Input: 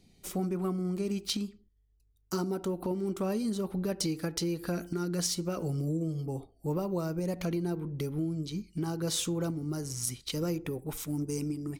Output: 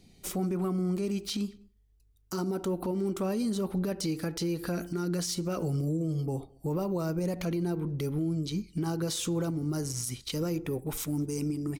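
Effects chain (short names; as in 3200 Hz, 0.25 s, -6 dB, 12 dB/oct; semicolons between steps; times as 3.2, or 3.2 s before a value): limiter -27.5 dBFS, peak gain reduction 10 dB; outdoor echo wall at 36 m, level -29 dB; gain +4 dB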